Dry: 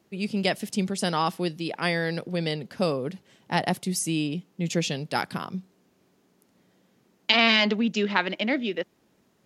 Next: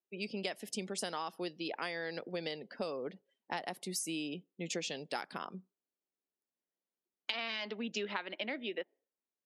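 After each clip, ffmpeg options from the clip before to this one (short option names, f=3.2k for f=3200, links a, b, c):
-af "highpass=330,afftdn=nr=29:nf=-48,acompressor=threshold=-30dB:ratio=12,volume=-4dB"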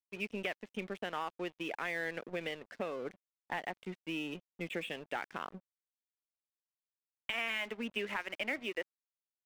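-af "aresample=8000,asoftclip=type=hard:threshold=-29.5dB,aresample=44100,lowpass=f=2.3k:t=q:w=1.9,aeval=exprs='sgn(val(0))*max(abs(val(0))-0.00282,0)':c=same,volume=1dB"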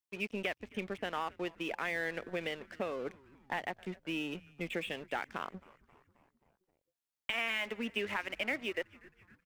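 -filter_complex "[0:a]asplit=6[a][b][c][d][e][f];[b]adelay=266,afreqshift=-140,volume=-23dB[g];[c]adelay=532,afreqshift=-280,volume=-27.2dB[h];[d]adelay=798,afreqshift=-420,volume=-31.3dB[i];[e]adelay=1064,afreqshift=-560,volume=-35.5dB[j];[f]adelay=1330,afreqshift=-700,volume=-39.6dB[k];[a][g][h][i][j][k]amix=inputs=6:normalize=0,volume=1.5dB"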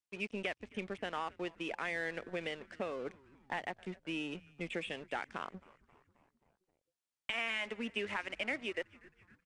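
-af "aresample=22050,aresample=44100,volume=-2dB"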